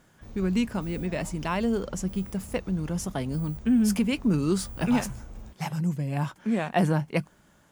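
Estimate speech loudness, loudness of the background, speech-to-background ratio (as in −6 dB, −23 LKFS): −28.0 LKFS, −44.5 LKFS, 16.5 dB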